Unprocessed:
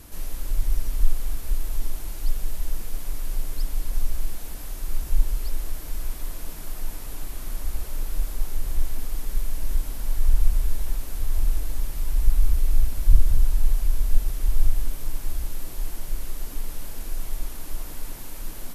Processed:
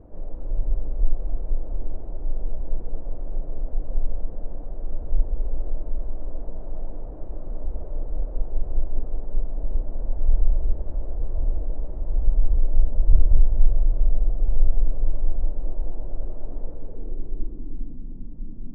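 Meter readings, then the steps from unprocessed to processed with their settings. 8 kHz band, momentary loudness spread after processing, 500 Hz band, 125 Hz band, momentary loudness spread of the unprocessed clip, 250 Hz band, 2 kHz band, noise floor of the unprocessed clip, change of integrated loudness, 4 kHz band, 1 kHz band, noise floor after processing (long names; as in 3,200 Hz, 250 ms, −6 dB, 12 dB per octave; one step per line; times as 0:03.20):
below −40 dB, 13 LU, +5.5 dB, +0.5 dB, 12 LU, +2.5 dB, −21.0 dB, −35 dBFS, +0.5 dB, below −35 dB, −3.0 dB, −33 dBFS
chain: adaptive Wiener filter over 9 samples
on a send: feedback echo with a low-pass in the loop 204 ms, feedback 81%, low-pass 2,500 Hz, level −9 dB
on the sum: low-pass filter sweep 580 Hz → 230 Hz, 0:16.61–0:18.01
level −1 dB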